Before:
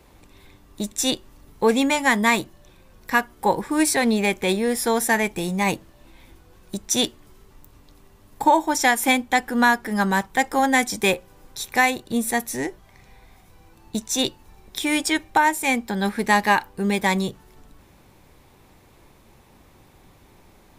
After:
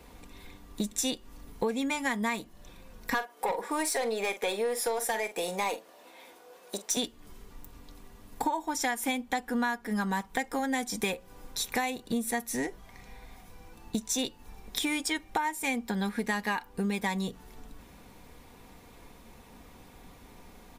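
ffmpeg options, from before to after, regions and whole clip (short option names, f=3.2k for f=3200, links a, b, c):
-filter_complex "[0:a]asettb=1/sr,asplit=3[a][b][c];[a]atrim=end=3.144[d];[b]atrim=start=3.14:end=6.97,asetpts=PTS-STARTPTS,afade=t=in:d=0.004:c=qsin,afade=t=out:st=3.826:d=0.004:c=qsin,highpass=f=520:t=q:w=1.8,aeval=exprs='(tanh(5.01*val(0)+0.1)-tanh(0.1))/5.01':c=same,asplit=2[e][f];[f]adelay=45,volume=-13dB[g];[e][g]amix=inputs=2:normalize=0,atrim=end_sample=168903[h];[c]atrim=start=6.966[i];[d][h]acrossfade=d=0.004:c1=hsin:c2=qsin[j];[j][i]acrossfade=d=0.004:c1=qsin:c2=hsin,aecho=1:1:4.2:0.42,acompressor=threshold=-28dB:ratio=6"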